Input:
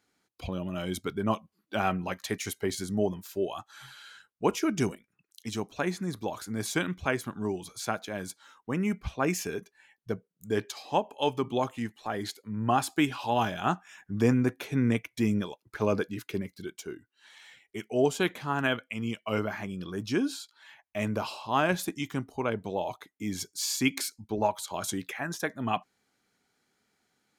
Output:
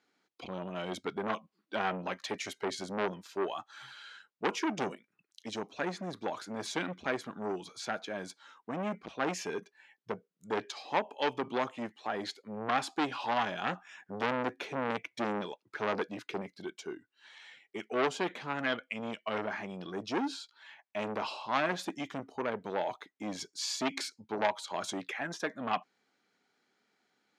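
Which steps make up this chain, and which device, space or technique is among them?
public-address speaker with an overloaded transformer (saturating transformer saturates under 1,800 Hz; band-pass filter 220–5,100 Hz)

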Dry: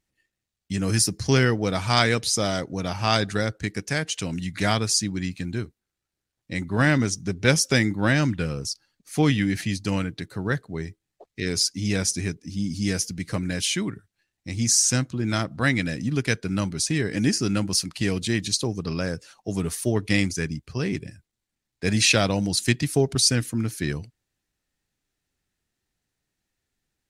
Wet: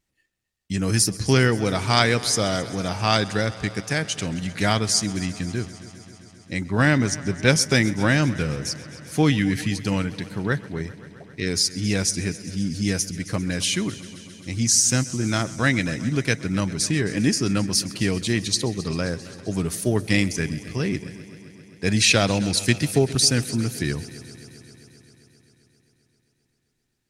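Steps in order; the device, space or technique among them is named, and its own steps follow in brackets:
multi-head tape echo (echo machine with several playback heads 132 ms, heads first and second, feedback 72%, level −21 dB; tape wow and flutter 22 cents)
level +1.5 dB

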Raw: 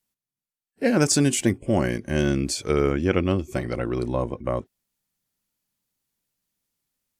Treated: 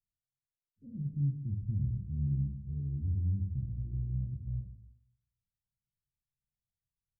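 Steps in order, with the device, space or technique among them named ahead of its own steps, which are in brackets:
club heard from the street (brickwall limiter −12 dBFS, peak gain reduction 5 dB; low-pass filter 130 Hz 24 dB per octave; convolution reverb RT60 0.75 s, pre-delay 9 ms, DRR 0.5 dB)
level −3.5 dB

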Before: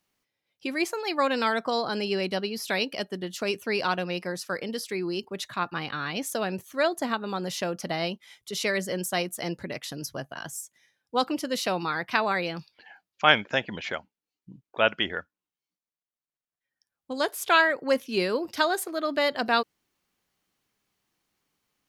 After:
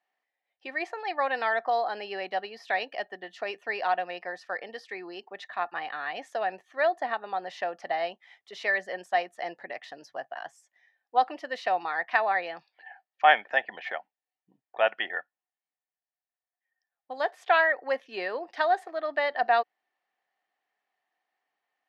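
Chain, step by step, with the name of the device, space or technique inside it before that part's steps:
tin-can telephone (band-pass filter 500–3,000 Hz; hollow resonant body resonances 740/1,800 Hz, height 14 dB, ringing for 25 ms)
level −5 dB

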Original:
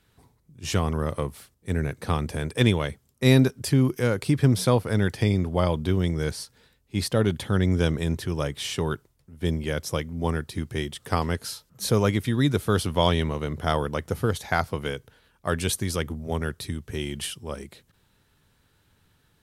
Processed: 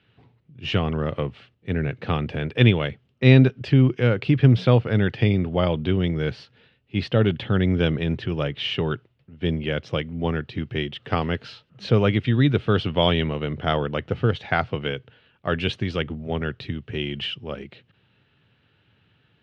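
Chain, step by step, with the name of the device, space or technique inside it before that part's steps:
guitar cabinet (loudspeaker in its box 100–3,500 Hz, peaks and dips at 120 Hz +6 dB, 1,000 Hz −6 dB, 2,800 Hz +8 dB)
level +2.5 dB

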